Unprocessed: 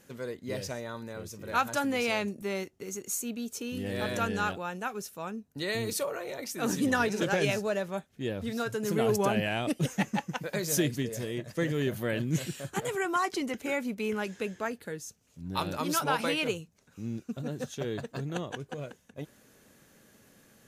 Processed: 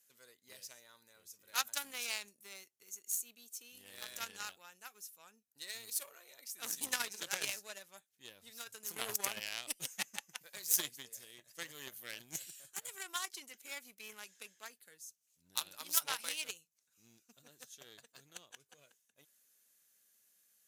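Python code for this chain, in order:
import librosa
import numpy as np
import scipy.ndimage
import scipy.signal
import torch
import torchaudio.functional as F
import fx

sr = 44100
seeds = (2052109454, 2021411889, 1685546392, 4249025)

y = fx.cheby_harmonics(x, sr, harmonics=(3,), levels_db=(-11,), full_scale_db=-14.5)
y = scipy.signal.lfilter([1.0, -0.97], [1.0], y)
y = F.gain(torch.from_numpy(y), 9.0).numpy()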